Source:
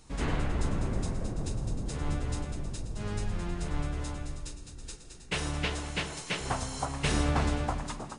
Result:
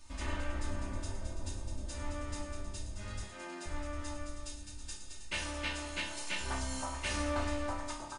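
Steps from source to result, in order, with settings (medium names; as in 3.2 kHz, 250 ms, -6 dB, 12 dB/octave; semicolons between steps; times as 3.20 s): in parallel at +1.5 dB: compression, threshold -39 dBFS, peak gain reduction 15 dB; on the sum: peaking EQ 290 Hz -8 dB 2.1 oct; comb 3.3 ms, depth 99%; 3.23–3.66 s: steep high-pass 220 Hz; chord resonator C2 sus4, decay 0.48 s; trim +4.5 dB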